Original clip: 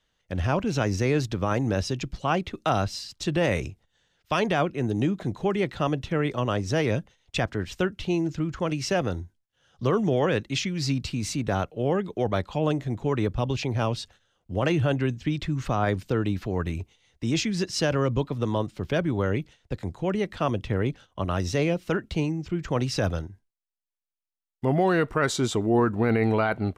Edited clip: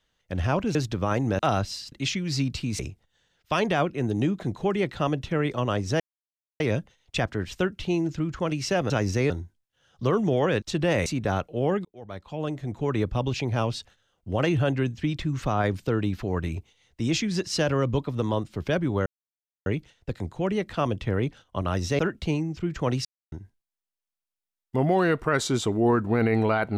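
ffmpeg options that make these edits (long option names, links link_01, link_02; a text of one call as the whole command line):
ffmpeg -i in.wav -filter_complex "[0:a]asplit=15[link_01][link_02][link_03][link_04][link_05][link_06][link_07][link_08][link_09][link_10][link_11][link_12][link_13][link_14][link_15];[link_01]atrim=end=0.752[link_16];[link_02]atrim=start=1.148:end=1.792[link_17];[link_03]atrim=start=2.618:end=3.152[link_18];[link_04]atrim=start=10.418:end=11.292[link_19];[link_05]atrim=start=3.588:end=6.8,asetpts=PTS-STARTPTS,afade=type=out:start_time=3.208:duration=0.004:curve=hsin,apad=pad_dur=0.6[link_20];[link_06]atrim=start=6.8:end=9.102,asetpts=PTS-STARTPTS,afade=type=in:duration=0.004:curve=hsin[link_21];[link_07]atrim=start=0.748:end=1.152[link_22];[link_08]atrim=start=9.098:end=10.422[link_23];[link_09]atrim=start=3.148:end=3.592[link_24];[link_10]atrim=start=11.288:end=12.08,asetpts=PTS-STARTPTS,afade=type=out:start_time=0.788:duration=0.004:curve=hsin[link_25];[link_11]atrim=start=12.08:end=19.29,asetpts=PTS-STARTPTS,afade=type=in:duration=1.15,afade=type=out:start_time=7.206:duration=0.004:curve=hsin,apad=pad_dur=0.6[link_26];[link_12]atrim=start=19.29:end=21.622,asetpts=PTS-STARTPTS,afade=type=in:duration=0.004:curve=hsin[link_27];[link_13]atrim=start=21.878:end=22.94,asetpts=PTS-STARTPTS,afade=type=out:start_time=1.058:duration=0.004:curve=hsin[link_28];[link_14]atrim=start=22.94:end=23.21,asetpts=PTS-STARTPTS,volume=0[link_29];[link_15]atrim=start=23.21,asetpts=PTS-STARTPTS,afade=type=in:duration=0.004:curve=hsin[link_30];[link_16][link_17]acrossfade=duration=0.004:curve1=hsin:curve2=hsin[link_31];[link_31][link_18]acrossfade=duration=0.004:curve1=hsin:curve2=hsin[link_32];[link_32][link_19]acrossfade=duration=0.004:curve1=hsin:curve2=hsin[link_33];[link_20][link_21]concat=n=2:v=0:a=1[link_34];[link_33][link_34]acrossfade=duration=0.004:curve1=hsin:curve2=hsin[link_35];[link_35][link_22]acrossfade=duration=0.004:curve1=hsin:curve2=hsin[link_36];[link_36][link_23]acrossfade=duration=0.004:curve1=hsin:curve2=hsin[link_37];[link_37][link_24]acrossfade=duration=0.004:curve1=hsin:curve2=hsin[link_38];[link_25][link_26][link_27]concat=n=3:v=0:a=1[link_39];[link_38][link_39]acrossfade=duration=0.004:curve1=hsin:curve2=hsin[link_40];[link_28][link_29][link_30]concat=n=3:v=0:a=1[link_41];[link_40][link_41]acrossfade=duration=0.004:curve1=hsin:curve2=hsin" out.wav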